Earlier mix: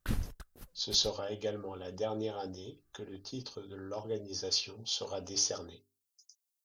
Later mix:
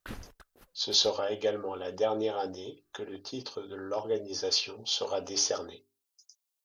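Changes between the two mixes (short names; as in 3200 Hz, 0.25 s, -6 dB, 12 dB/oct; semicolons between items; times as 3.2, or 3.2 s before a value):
speech +8.0 dB; master: add tone controls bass -12 dB, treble -7 dB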